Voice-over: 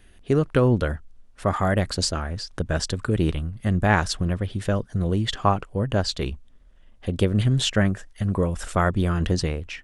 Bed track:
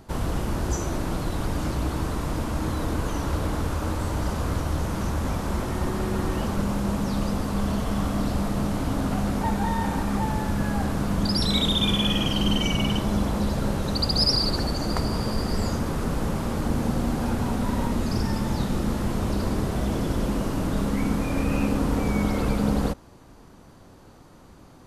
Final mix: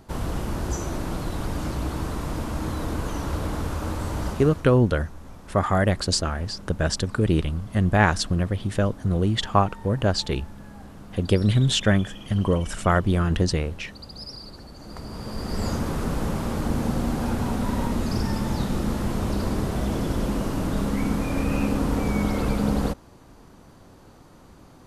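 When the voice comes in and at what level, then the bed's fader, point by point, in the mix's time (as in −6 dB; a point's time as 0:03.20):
4.10 s, +1.0 dB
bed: 0:04.28 −1.5 dB
0:04.77 −17.5 dB
0:14.70 −17.5 dB
0:15.69 0 dB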